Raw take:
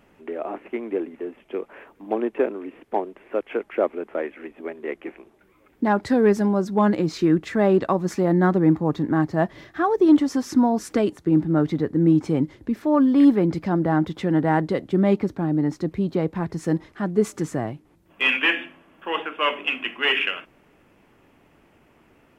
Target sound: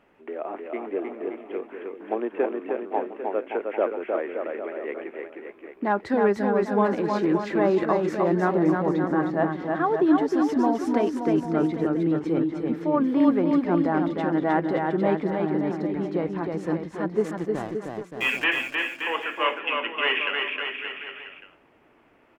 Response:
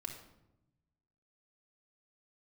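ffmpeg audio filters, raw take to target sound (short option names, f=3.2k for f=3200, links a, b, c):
-filter_complex "[0:a]bass=f=250:g=-9,treble=f=4k:g=-11,asettb=1/sr,asplit=3[a][b][c];[a]atrim=end=17.314[d];[b]atrim=start=17.31:end=18.44,asetpts=PTS-STARTPTS,afade=t=in:d=0.004:c=qsin,afade=t=out:st=1.126:d=0.004:c=qsin,aeval=exprs='sgn(val(0))*max(abs(val(0))-0.0119,0)':c=same[e];[c]atrim=start=18.436[f];[d][e]acrossfade=d=0.004:c1=hsin:c2=qsin[g];[g][f]acrossfade=d=0.004:c1=qsin:c2=hsin,aecho=1:1:310|573.5|797.5|987.9|1150:0.631|0.398|0.251|0.158|0.1,volume=-2dB"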